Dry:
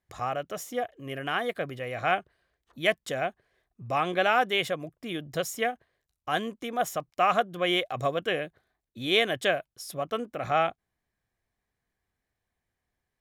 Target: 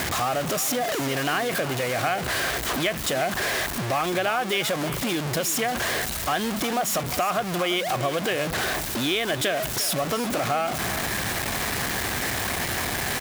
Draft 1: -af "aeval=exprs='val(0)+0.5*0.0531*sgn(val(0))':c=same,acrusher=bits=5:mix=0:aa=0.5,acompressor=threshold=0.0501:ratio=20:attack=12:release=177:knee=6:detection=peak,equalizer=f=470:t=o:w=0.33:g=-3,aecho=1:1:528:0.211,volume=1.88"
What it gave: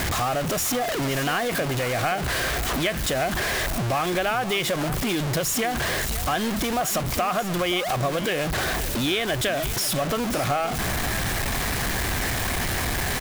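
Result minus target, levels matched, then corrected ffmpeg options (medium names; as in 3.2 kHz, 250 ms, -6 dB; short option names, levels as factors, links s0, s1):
echo 179 ms late; 125 Hz band +3.5 dB
-af "aeval=exprs='val(0)+0.5*0.0531*sgn(val(0))':c=same,acrusher=bits=5:mix=0:aa=0.5,acompressor=threshold=0.0501:ratio=20:attack=12:release=177:knee=6:detection=peak,highpass=f=160:p=1,equalizer=f=470:t=o:w=0.33:g=-3,aecho=1:1:349:0.211,volume=1.88"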